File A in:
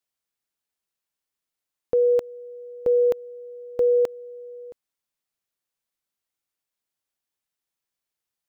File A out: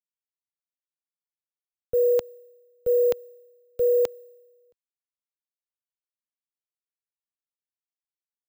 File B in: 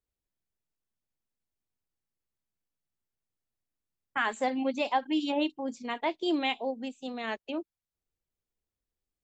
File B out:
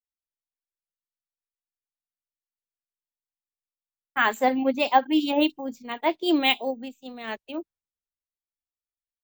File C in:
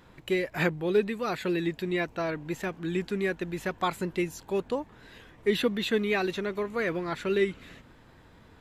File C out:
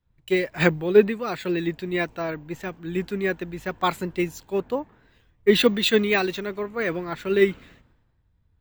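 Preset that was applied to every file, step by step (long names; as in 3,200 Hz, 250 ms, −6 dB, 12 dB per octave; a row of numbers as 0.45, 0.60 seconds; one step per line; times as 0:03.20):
bad sample-rate conversion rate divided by 2×, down filtered, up hold
multiband upward and downward expander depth 100%
loudness normalisation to −24 LKFS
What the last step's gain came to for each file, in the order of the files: −1.5, +6.0, +4.0 decibels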